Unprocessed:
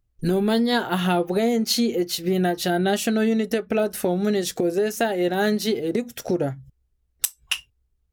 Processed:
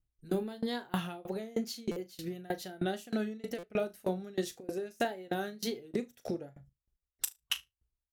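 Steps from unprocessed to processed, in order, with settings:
tape wow and flutter 73 cents
on a send: flutter between parallel walls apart 6.4 metres, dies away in 0.22 s
on the sum: buffer that repeats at 0:01.91/0:03.58/0:06.97, samples 256, times 8
tremolo with a ramp in dB decaying 3.2 Hz, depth 26 dB
level −6.5 dB

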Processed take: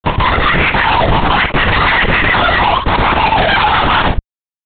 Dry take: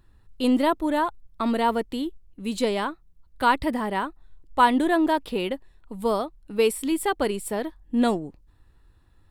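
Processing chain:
peak hold with a rise ahead of every peak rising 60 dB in 0.72 s
Butterworth high-pass 340 Hz 72 dB per octave
mains-hum notches 50/100/150/200/250/300/350/400/450 Hz
volume swells 797 ms
in parallel at −1 dB: output level in coarse steps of 20 dB
on the sum: comparator with hysteresis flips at −40.5 dBFS
on a send: single-tap delay 112 ms −9.5 dB
on the sum: wrong playback speed 7.5 ips tape played at 15 ips
linear-prediction vocoder at 8 kHz whisper
boost into a limiter +23.5 dB
level −1 dB

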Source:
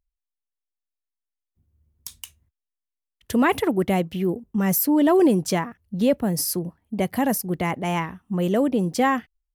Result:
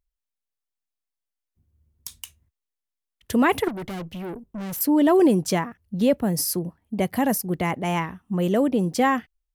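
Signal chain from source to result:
0:03.68–0:04.81: tube saturation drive 30 dB, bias 0.4

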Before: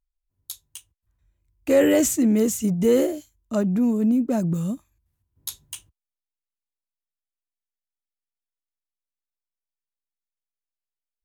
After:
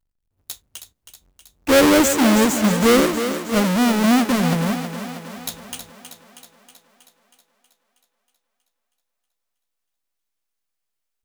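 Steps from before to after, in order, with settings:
each half-wave held at its own peak
on a send: feedback echo with a high-pass in the loop 319 ms, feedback 62%, high-pass 150 Hz, level −9 dB

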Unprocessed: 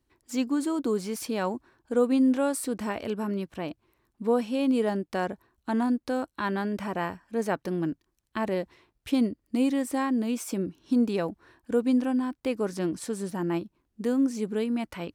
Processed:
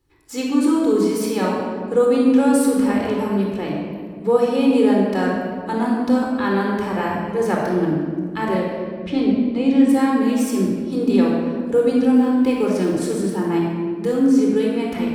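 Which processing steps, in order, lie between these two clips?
0:08.57–0:09.89: high-frequency loss of the air 130 metres
0:12.16–0:13.41: log-companded quantiser 8 bits
rectangular room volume 2,400 cubic metres, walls mixed, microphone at 4.1 metres
level +2.5 dB

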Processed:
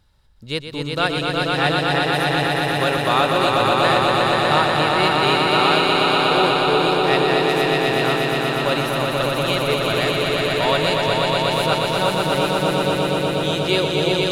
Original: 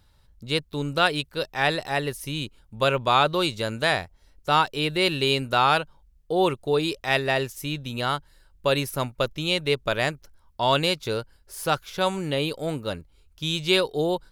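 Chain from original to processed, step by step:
high-shelf EQ 10,000 Hz −5.5 dB
on a send: echo that builds up and dies away 121 ms, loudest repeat 5, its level −3 dB

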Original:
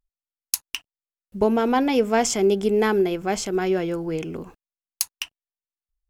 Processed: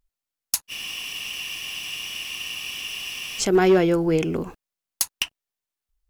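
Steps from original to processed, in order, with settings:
hard clipping −17.5 dBFS, distortion −12 dB
frozen spectrum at 0:00.71, 2.69 s
level +6.5 dB

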